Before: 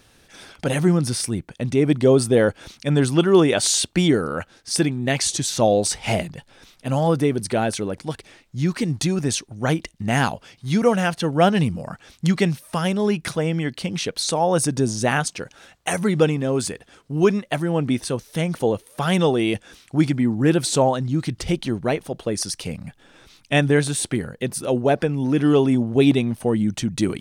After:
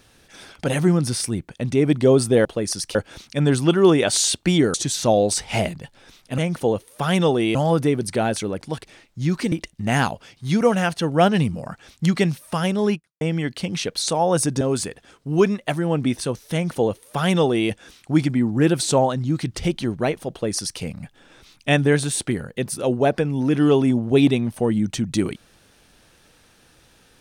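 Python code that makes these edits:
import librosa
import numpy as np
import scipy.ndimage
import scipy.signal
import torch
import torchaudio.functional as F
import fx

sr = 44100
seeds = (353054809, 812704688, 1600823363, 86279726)

y = fx.edit(x, sr, fx.cut(start_s=4.24, length_s=1.04),
    fx.cut(start_s=8.89, length_s=0.84),
    fx.fade_out_span(start_s=13.16, length_s=0.26, curve='exp'),
    fx.cut(start_s=14.82, length_s=1.63),
    fx.duplicate(start_s=18.37, length_s=1.17, to_s=6.92),
    fx.duplicate(start_s=22.15, length_s=0.5, to_s=2.45), tone=tone)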